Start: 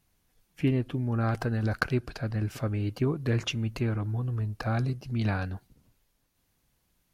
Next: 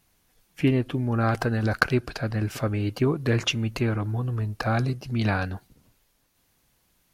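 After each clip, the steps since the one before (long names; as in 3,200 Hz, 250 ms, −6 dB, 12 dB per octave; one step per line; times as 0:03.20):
low-shelf EQ 240 Hz −5.5 dB
level +7 dB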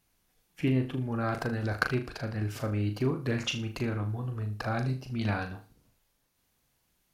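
flutter between parallel walls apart 6.6 metres, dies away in 0.33 s
level −7 dB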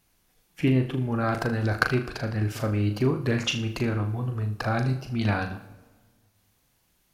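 convolution reverb RT60 1.5 s, pre-delay 58 ms, DRR 17.5 dB
level +5 dB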